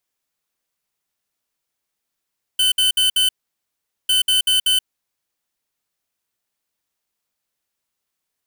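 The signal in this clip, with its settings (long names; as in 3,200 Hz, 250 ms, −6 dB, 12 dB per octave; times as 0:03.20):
beeps in groups square 3,040 Hz, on 0.13 s, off 0.06 s, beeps 4, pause 0.80 s, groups 2, −16 dBFS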